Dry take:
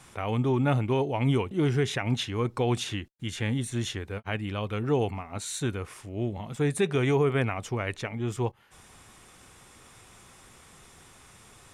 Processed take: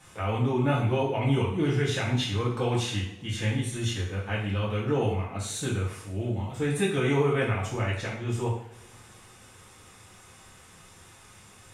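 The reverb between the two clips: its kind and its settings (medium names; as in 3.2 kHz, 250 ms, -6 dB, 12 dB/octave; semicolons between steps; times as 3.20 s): two-slope reverb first 0.58 s, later 3.3 s, from -27 dB, DRR -6.5 dB; trim -6 dB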